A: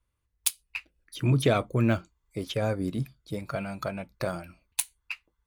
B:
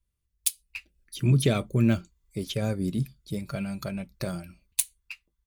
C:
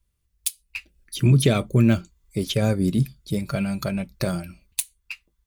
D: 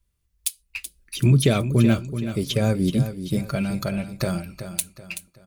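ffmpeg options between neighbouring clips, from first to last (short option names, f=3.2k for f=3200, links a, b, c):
-af "equalizer=f=970:w=0.47:g=-12.5,aecho=1:1:5.1:0.3,dynaudnorm=f=120:g=11:m=5dB"
-af "alimiter=limit=-14.5dB:level=0:latency=1:release=412,volume=7dB"
-af "aecho=1:1:379|758|1137|1516:0.299|0.11|0.0409|0.0151"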